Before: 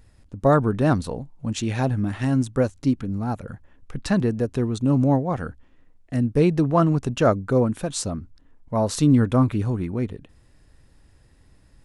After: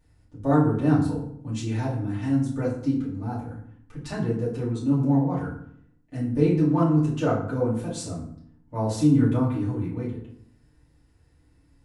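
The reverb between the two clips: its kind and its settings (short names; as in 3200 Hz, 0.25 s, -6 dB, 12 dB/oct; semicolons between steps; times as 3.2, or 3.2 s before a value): FDN reverb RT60 0.64 s, low-frequency decay 1.4×, high-frequency decay 0.65×, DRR -8.5 dB; gain -15 dB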